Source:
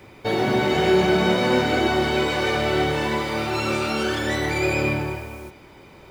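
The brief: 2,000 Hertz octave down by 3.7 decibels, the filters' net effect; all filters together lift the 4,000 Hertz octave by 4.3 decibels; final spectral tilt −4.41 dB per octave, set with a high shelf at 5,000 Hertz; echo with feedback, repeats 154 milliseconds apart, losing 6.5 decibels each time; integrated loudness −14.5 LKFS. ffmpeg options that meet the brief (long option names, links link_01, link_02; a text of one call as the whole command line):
ffmpeg -i in.wav -af "equalizer=frequency=2000:width_type=o:gain=-7.5,equalizer=frequency=4000:width_type=o:gain=5,highshelf=frequency=5000:gain=7,aecho=1:1:154|308|462|616|770|924:0.473|0.222|0.105|0.0491|0.0231|0.0109,volume=6dB" out.wav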